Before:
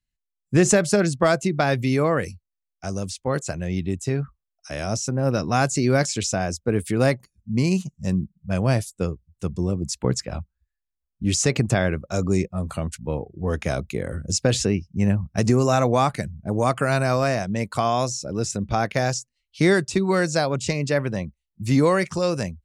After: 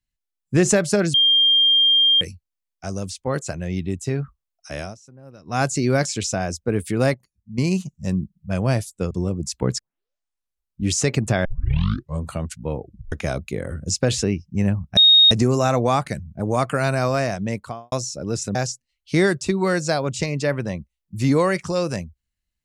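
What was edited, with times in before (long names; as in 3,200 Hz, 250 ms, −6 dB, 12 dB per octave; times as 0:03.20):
0:01.14–0:02.21: beep over 3,200 Hz −12.5 dBFS
0:04.79–0:05.61: duck −22 dB, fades 0.16 s
0:07.14–0:07.58: clip gain −9 dB
0:09.11–0:09.53: remove
0:10.21: tape start 1.02 s
0:11.87: tape start 0.80 s
0:13.25: tape stop 0.29 s
0:15.39: insert tone 3,730 Hz −8.5 dBFS 0.34 s
0:17.54–0:18.00: fade out and dull
0:18.63–0:19.02: remove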